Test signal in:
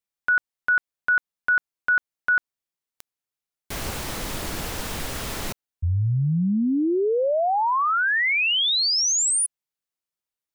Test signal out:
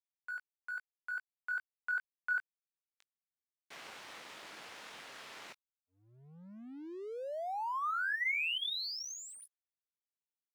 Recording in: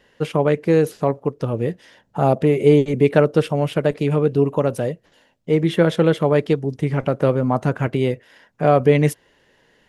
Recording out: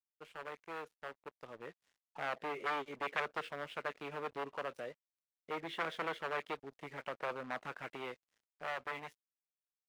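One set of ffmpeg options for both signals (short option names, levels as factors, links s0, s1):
-filter_complex "[0:a]acrossover=split=1200[s0][s1];[s0]aeval=exprs='0.211*(abs(mod(val(0)/0.211+3,4)-2)-1)':c=same[s2];[s1]flanger=delay=17.5:depth=5.2:speed=2.4[s3];[s2][s3]amix=inputs=2:normalize=0,dynaudnorm=f=150:g=21:m=2.51,highpass=130,lowpass=2200,aderivative,aeval=exprs='sgn(val(0))*max(abs(val(0))-0.0015,0)':c=same,volume=0.631"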